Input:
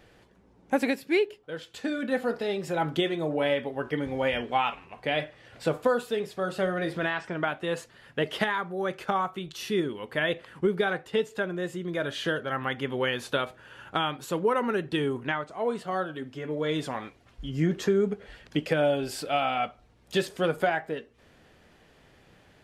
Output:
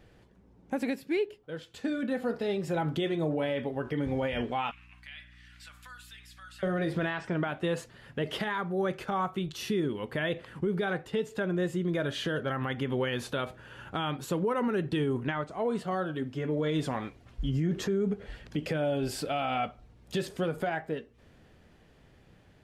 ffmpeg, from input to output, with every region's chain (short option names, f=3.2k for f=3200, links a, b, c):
-filter_complex "[0:a]asettb=1/sr,asplit=3[a][b][c];[a]atrim=end=4.714[d];[b]atrim=start=4.71:end=6.63,asetpts=PTS-STARTPTS,afade=t=in:d=0.004:c=qsin,afade=t=out:st=1.916:d=0.004:c=qsin,highpass=f=1.5k:w=0.5412,highpass=f=1.5k:w=1.3066,acompressor=threshold=-52dB:ratio=2:attack=3.2:release=140:knee=1:detection=peak,aeval=exprs='val(0)+0.000794*(sin(2*PI*60*n/s)+sin(2*PI*2*60*n/s)/2+sin(2*PI*3*60*n/s)/3+sin(2*PI*4*60*n/s)/4+sin(2*PI*5*60*n/s)/5)':c=same[e];[c]atrim=start=6.626[f];[d][e]acrossfade=d=0.004:c1=hsin:c2=qsin[g];[g][f]acrossfade=d=0.004:c1=qsin:c2=hsin,dynaudnorm=f=720:g=9:m=4.5dB,lowshelf=f=290:g=9,alimiter=limit=-16dB:level=0:latency=1:release=70,volume=-5.5dB"